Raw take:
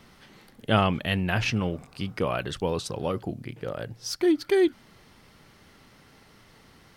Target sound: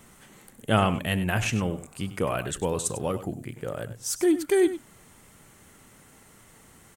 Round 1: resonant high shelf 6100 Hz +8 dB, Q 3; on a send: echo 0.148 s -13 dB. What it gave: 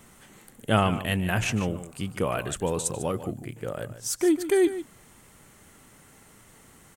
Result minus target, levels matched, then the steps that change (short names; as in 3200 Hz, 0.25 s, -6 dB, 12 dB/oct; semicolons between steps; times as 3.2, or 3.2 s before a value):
echo 50 ms late
change: echo 98 ms -13 dB